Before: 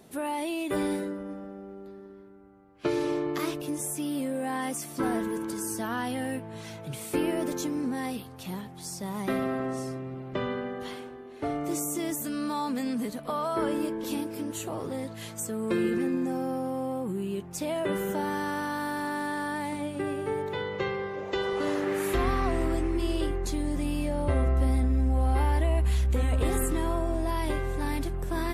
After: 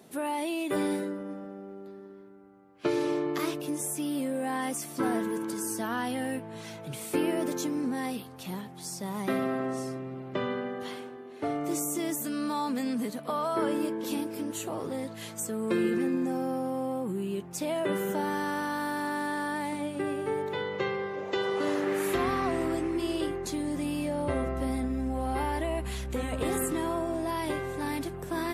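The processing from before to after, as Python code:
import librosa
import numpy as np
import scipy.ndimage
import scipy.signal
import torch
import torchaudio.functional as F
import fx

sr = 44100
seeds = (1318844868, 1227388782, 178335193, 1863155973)

y = scipy.signal.sosfilt(scipy.signal.butter(2, 130.0, 'highpass', fs=sr, output='sos'), x)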